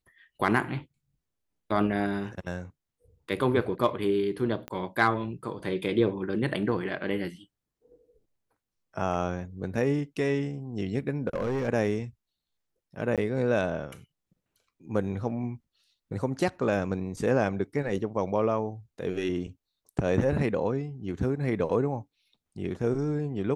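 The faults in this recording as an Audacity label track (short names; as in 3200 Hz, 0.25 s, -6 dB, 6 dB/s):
4.680000	4.680000	pop -22 dBFS
11.270000	11.690000	clipped -25 dBFS
13.160000	13.180000	gap 17 ms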